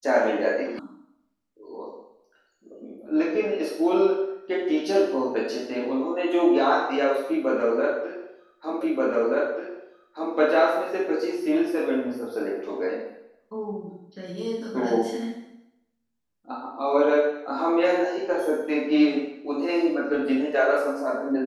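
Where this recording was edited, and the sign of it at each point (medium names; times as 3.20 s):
0.79 s: sound stops dead
8.81 s: repeat of the last 1.53 s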